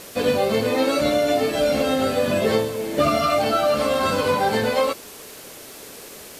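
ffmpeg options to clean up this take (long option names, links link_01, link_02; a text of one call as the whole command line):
ffmpeg -i in.wav -af "adeclick=threshold=4,afftdn=noise_reduction=27:noise_floor=-40" out.wav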